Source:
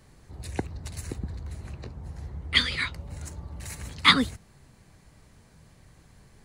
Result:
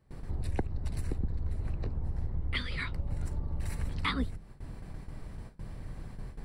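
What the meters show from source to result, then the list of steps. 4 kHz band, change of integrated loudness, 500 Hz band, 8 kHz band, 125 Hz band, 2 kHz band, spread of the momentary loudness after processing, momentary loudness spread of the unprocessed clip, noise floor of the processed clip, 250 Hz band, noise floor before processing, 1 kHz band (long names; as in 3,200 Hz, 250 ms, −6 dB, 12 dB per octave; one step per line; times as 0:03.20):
−16.5 dB, −11.0 dB, −3.5 dB, −12.5 dB, +2.0 dB, −12.0 dB, 12 LU, 21 LU, −50 dBFS, −6.0 dB, −57 dBFS, −10.5 dB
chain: sub-octave generator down 2 octaves, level −1 dB
low-shelf EQ 66 Hz +6 dB
noise gate with hold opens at −41 dBFS
downward compressor 3 to 1, threshold −41 dBFS, peak gain reduction 21 dB
high-shelf EQ 2,000 Hz −10 dB
notch filter 6,600 Hz, Q 5.1
level +9 dB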